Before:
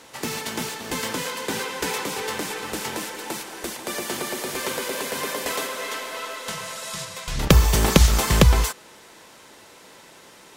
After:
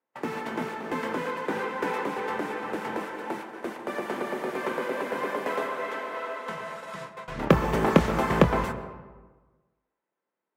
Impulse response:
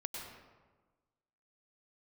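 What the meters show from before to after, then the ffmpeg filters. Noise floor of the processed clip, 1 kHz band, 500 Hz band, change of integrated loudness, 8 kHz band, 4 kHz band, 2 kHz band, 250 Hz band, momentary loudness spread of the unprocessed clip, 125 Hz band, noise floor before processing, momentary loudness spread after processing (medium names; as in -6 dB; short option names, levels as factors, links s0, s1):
under -85 dBFS, +0.5 dB, +0.5 dB, -5.0 dB, -21.5 dB, -14.5 dB, -3.5 dB, -1.0 dB, 14 LU, -8.5 dB, -49 dBFS, 14 LU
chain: -filter_complex "[0:a]acrossover=split=160 2100:gain=0.141 1 0.0794[s0][s1][s2];[s0][s1][s2]amix=inputs=3:normalize=0,agate=range=0.0158:threshold=0.0112:ratio=16:detection=peak,asplit=2[s3][s4];[1:a]atrim=start_sample=2205,highshelf=f=4100:g=-10,adelay=24[s5];[s4][s5]afir=irnorm=-1:irlink=0,volume=0.422[s6];[s3][s6]amix=inputs=2:normalize=0"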